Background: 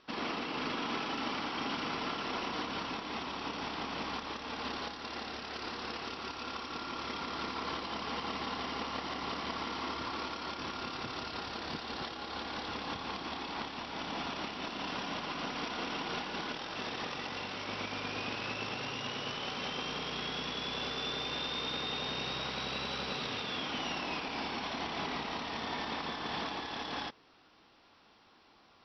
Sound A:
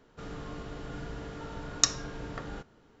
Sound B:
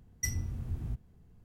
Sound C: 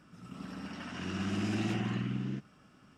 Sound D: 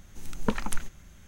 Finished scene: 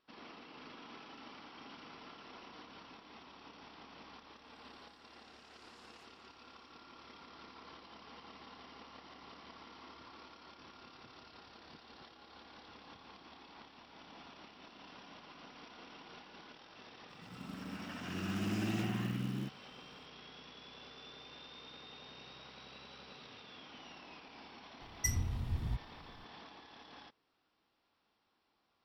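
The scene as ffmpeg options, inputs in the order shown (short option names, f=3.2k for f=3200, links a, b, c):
-filter_complex "[3:a]asplit=2[a][b];[0:a]volume=-16.5dB[c];[a]aderivative[d];[b]acrusher=bits=6:mode=log:mix=0:aa=0.000001[e];[d]atrim=end=2.97,asetpts=PTS-STARTPTS,volume=-18dB,afade=t=in:d=0.004:c=hsin,afade=t=out:st=2.966:d=0.004:c=hsin,adelay=4310[f];[e]atrim=end=2.97,asetpts=PTS-STARTPTS,volume=-3dB,afade=t=in:d=0.004:c=hsin,afade=t=out:st=2.966:d=0.004:c=hsin,adelay=17090[g];[2:a]atrim=end=1.44,asetpts=PTS-STARTPTS,volume=-0.5dB,afade=t=in:d=0.004:c=hsin,afade=t=out:st=1.436:d=0.004:c=hsin,adelay=24810[h];[c][f][g][h]amix=inputs=4:normalize=0"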